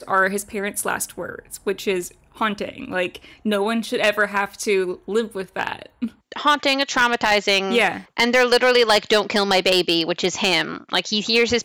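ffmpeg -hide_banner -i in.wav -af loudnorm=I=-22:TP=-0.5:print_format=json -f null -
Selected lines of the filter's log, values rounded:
"input_i" : "-19.6",
"input_tp" : "-7.6",
"input_lra" : "6.5",
"input_thresh" : "-29.8",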